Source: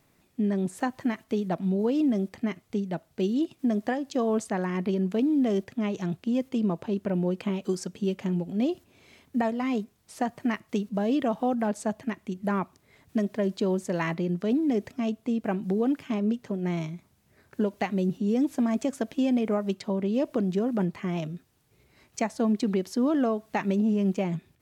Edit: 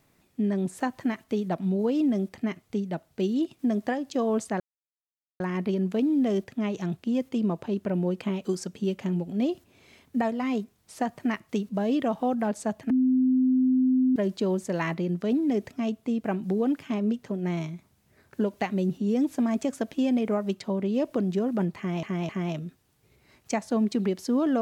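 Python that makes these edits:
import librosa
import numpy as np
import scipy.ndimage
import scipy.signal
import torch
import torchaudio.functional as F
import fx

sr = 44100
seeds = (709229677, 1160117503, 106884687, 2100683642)

y = fx.edit(x, sr, fx.insert_silence(at_s=4.6, length_s=0.8),
    fx.bleep(start_s=12.1, length_s=1.26, hz=257.0, db=-18.5),
    fx.repeat(start_s=20.97, length_s=0.26, count=3), tone=tone)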